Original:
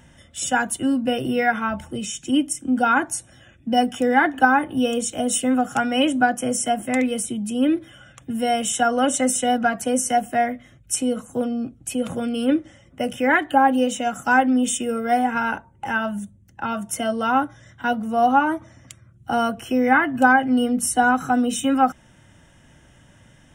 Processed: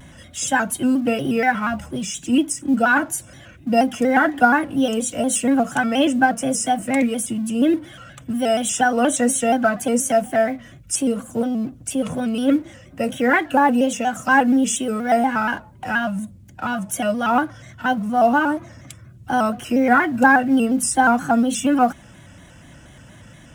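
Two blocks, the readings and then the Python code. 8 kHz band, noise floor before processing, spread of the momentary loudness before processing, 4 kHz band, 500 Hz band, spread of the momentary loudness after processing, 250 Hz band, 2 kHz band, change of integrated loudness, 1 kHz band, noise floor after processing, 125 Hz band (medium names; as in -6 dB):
+1.5 dB, -53 dBFS, 11 LU, -1.0 dB, +2.5 dB, 10 LU, +2.5 dB, +2.0 dB, +1.5 dB, +0.5 dB, -45 dBFS, +4.0 dB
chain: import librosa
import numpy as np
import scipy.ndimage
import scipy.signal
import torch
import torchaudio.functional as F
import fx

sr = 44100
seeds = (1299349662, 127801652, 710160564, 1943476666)

y = fx.law_mismatch(x, sr, coded='mu')
y = fx.notch_comb(y, sr, f0_hz=430.0)
y = fx.vibrato_shape(y, sr, shape='square', rate_hz=4.2, depth_cents=100.0)
y = y * librosa.db_to_amplitude(2.0)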